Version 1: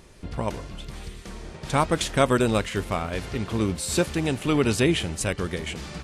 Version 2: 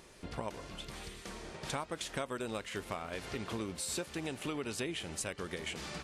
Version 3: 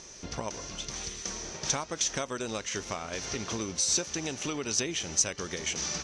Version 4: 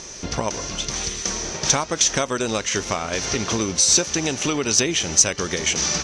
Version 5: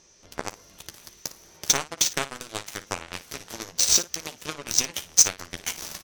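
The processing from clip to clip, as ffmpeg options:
-af "lowshelf=f=190:g=-11.5,acompressor=threshold=0.0224:ratio=6,volume=0.75"
-af "lowpass=f=6000:t=q:w=11,volume=1.5"
-af "acontrast=66,volume=1.68"
-filter_complex "[0:a]aeval=exprs='0.841*(cos(1*acos(clip(val(0)/0.841,-1,1)))-cos(1*PI/2))+0.133*(cos(7*acos(clip(val(0)/0.841,-1,1)))-cos(7*PI/2))':c=same,asplit=2[s0][s1];[s1]aecho=0:1:12|57:0.335|0.188[s2];[s0][s2]amix=inputs=2:normalize=0,volume=0.891"

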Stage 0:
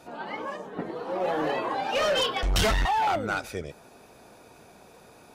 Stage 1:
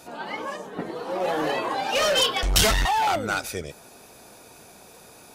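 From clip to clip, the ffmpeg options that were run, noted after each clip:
-af "highshelf=f=4100:g=11.5,volume=1.19"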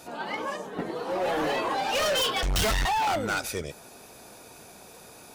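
-af "volume=15,asoftclip=hard,volume=0.0668"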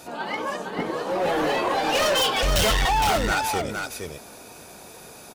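-af "aecho=1:1:462:0.531,volume=1.5"

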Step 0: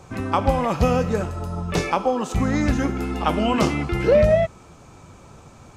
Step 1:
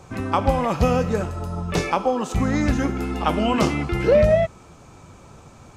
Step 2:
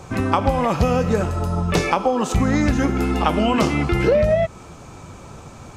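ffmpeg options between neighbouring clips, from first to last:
-af anull
-af "acompressor=threshold=0.0891:ratio=4,volume=2.11"

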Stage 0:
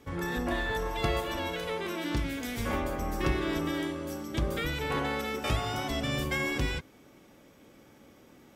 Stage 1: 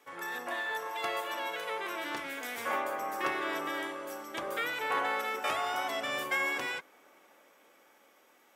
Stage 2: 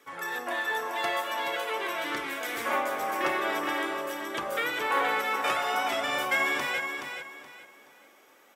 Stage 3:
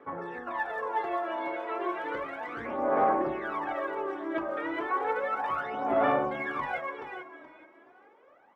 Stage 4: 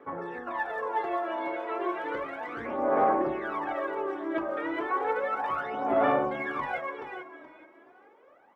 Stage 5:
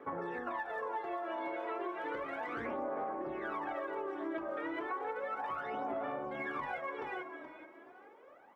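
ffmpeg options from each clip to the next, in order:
-filter_complex "[0:a]highpass=730,equalizer=f=4600:t=o:w=1.3:g=-5,acrossover=split=2100[s0][s1];[s0]dynaudnorm=f=350:g=9:m=1.78[s2];[s2][s1]amix=inputs=2:normalize=0"
-af "flanger=delay=0.5:depth=5.4:regen=-46:speed=0.46:shape=triangular,aecho=1:1:424|848|1272|1696:0.473|0.132|0.0371|0.0104,volume=2.51"
-af "lowpass=1100,alimiter=level_in=1.19:limit=0.0631:level=0:latency=1:release=28,volume=0.841,aphaser=in_gain=1:out_gain=1:delay=3.2:decay=0.72:speed=0.33:type=sinusoidal"
-af "equalizer=f=380:t=o:w=1.6:g=2"
-af "acompressor=threshold=0.0178:ratio=12"

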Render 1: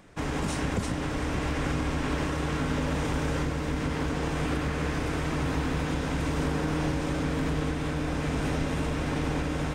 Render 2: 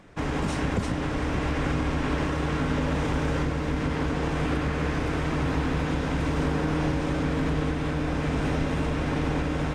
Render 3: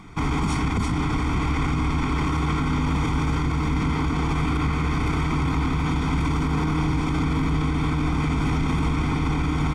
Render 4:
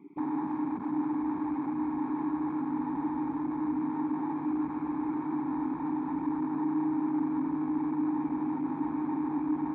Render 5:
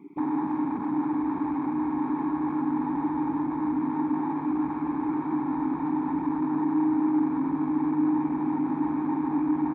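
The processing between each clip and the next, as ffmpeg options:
-af "highshelf=f=6900:g=-11,volume=1.33"
-af "aecho=1:1:0.9:0.88,alimiter=limit=0.0944:level=0:latency=1:release=26,volume=1.78"
-filter_complex "[0:a]asplit=2[s0][s1];[s1]highpass=f=720:p=1,volume=10,asoftclip=type=tanh:threshold=0.178[s2];[s0][s2]amix=inputs=2:normalize=0,lowpass=f=1200:p=1,volume=0.501,asplit=3[s3][s4][s5];[s3]bandpass=f=300:t=q:w=8,volume=1[s6];[s4]bandpass=f=870:t=q:w=8,volume=0.501[s7];[s5]bandpass=f=2240:t=q:w=8,volume=0.355[s8];[s6][s7][s8]amix=inputs=3:normalize=0,afwtdn=0.0158"
-af "aecho=1:1:405:0.282,volume=1.68"

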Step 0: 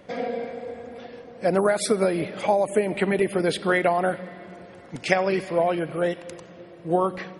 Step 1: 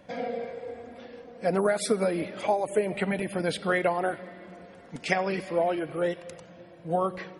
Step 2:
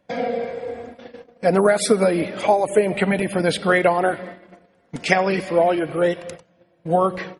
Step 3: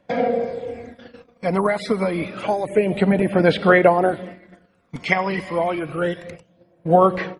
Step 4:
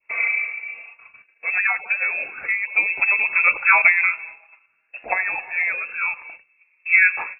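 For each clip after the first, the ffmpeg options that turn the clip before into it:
-af "flanger=delay=1.2:depth=3.2:regen=-51:speed=0.3:shape=sinusoidal"
-af "agate=range=0.112:threshold=0.00708:ratio=16:detection=peak,volume=2.66"
-filter_complex "[0:a]acrossover=split=4100[s0][s1];[s1]acompressor=threshold=0.00355:ratio=4:attack=1:release=60[s2];[s0][s2]amix=inputs=2:normalize=0,aphaser=in_gain=1:out_gain=1:delay=1:decay=0.52:speed=0.28:type=sinusoidal,volume=0.794"
-af "lowpass=f=2400:t=q:w=0.5098,lowpass=f=2400:t=q:w=0.6013,lowpass=f=2400:t=q:w=0.9,lowpass=f=2400:t=q:w=2.563,afreqshift=-2800,adynamicequalizer=threshold=0.0501:dfrequency=1500:dqfactor=0.76:tfrequency=1500:tqfactor=0.76:attack=5:release=100:ratio=0.375:range=3:mode=boostabove:tftype=bell,volume=0.531"

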